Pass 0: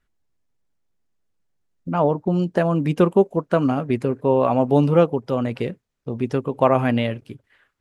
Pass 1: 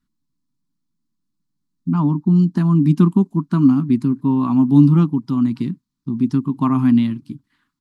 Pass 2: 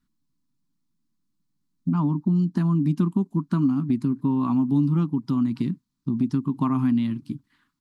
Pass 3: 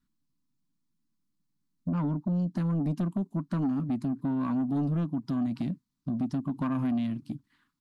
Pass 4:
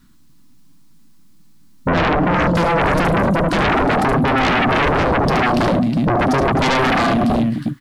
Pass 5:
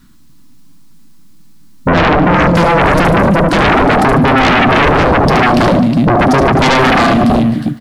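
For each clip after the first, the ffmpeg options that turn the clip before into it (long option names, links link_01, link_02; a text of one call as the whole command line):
ffmpeg -i in.wav -af "firequalizer=gain_entry='entry(100,0);entry(150,12);entry(290,13);entry(490,-26);entry(1000,4);entry(1600,-5);entry(2700,-5);entry(4200,7);entry(6100,3)':delay=0.05:min_phase=1,volume=-4dB" out.wav
ffmpeg -i in.wav -af "acompressor=threshold=-21dB:ratio=3" out.wav
ffmpeg -i in.wav -af "asoftclip=type=tanh:threshold=-20dB,volume=-3.5dB" out.wav
ffmpeg -i in.wav -af "aecho=1:1:73|109|259|362:0.531|0.211|0.2|0.316,aeval=exprs='0.126*sin(PI/2*6.31*val(0)/0.126)':channel_layout=same,volume=5.5dB" out.wav
ffmpeg -i in.wav -af "aecho=1:1:147|294|441:0.158|0.0523|0.0173,volume=6.5dB" out.wav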